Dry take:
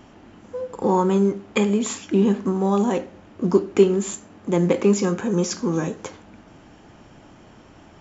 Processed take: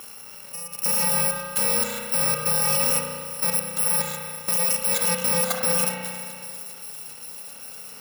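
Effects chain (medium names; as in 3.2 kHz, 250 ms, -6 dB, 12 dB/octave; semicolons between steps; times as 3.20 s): bit-reversed sample order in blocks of 128 samples; Bessel high-pass 450 Hz, order 2; treble shelf 2.3 kHz -7 dB; in parallel at +0.5 dB: peak limiter -19.5 dBFS, peak gain reduction 10 dB; on the sum: level held to a coarse grid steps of 13 dB; saturation -17.5 dBFS, distortion -23 dB; on a send: feedback echo behind a high-pass 397 ms, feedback 80%, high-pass 3.8 kHz, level -16.5 dB; on the sum: spring tank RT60 2.1 s, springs 33 ms, chirp 75 ms, DRR 0 dB; tape noise reduction on one side only encoder only; trim +5 dB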